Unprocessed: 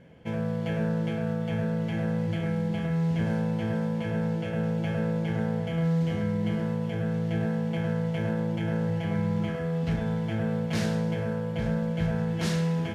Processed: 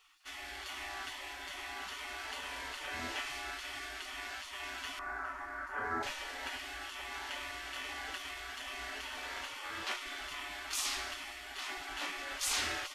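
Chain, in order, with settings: spectral gate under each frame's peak -30 dB weak; 4.99–6.03 s: resonant high shelf 2.1 kHz -13.5 dB, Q 3; trim +9.5 dB

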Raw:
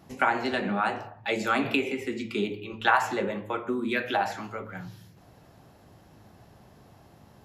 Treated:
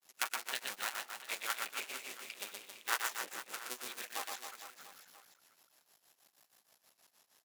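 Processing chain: cycle switcher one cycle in 2, muted; differentiator; granulator 136 ms, grains 6.3 per s, spray 12 ms, pitch spread up and down by 0 st; bass shelf 120 Hz -9 dB; reverse bouncing-ball echo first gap 120 ms, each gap 1.25×, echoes 5; trim +5.5 dB

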